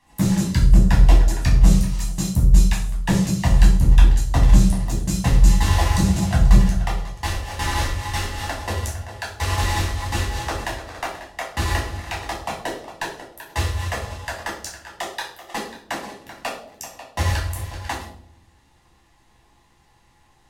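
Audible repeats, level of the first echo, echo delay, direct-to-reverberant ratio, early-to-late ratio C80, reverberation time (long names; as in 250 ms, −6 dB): no echo audible, no echo audible, no echo audible, −4.5 dB, 9.0 dB, 0.65 s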